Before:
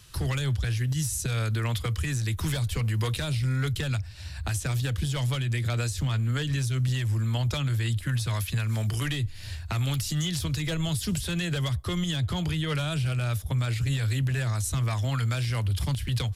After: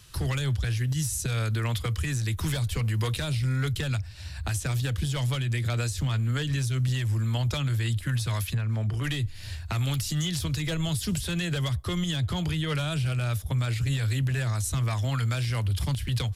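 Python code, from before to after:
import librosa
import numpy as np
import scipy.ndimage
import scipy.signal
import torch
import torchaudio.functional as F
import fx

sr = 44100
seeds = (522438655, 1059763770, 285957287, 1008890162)

y = fx.lowpass(x, sr, hz=1200.0, slope=6, at=(8.53, 9.03), fade=0.02)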